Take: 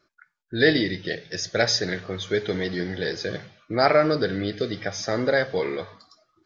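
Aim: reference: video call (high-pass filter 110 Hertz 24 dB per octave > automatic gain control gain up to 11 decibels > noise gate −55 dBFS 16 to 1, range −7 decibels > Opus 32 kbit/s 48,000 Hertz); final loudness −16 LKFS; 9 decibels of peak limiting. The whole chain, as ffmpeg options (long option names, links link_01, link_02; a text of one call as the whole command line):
ffmpeg -i in.wav -af "alimiter=limit=-14.5dB:level=0:latency=1,highpass=frequency=110:width=0.5412,highpass=frequency=110:width=1.3066,dynaudnorm=maxgain=11dB,agate=range=-7dB:threshold=-55dB:ratio=16,volume=12dB" -ar 48000 -c:a libopus -b:a 32k out.opus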